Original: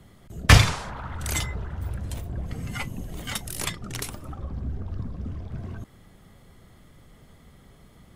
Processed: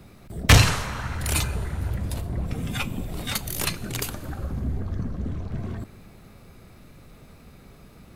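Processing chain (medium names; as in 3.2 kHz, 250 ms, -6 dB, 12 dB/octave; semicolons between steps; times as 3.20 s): formant shift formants +3 st; Schroeder reverb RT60 2.3 s, combs from 29 ms, DRR 17.5 dB; saturation -10.5 dBFS, distortion -12 dB; trim +3.5 dB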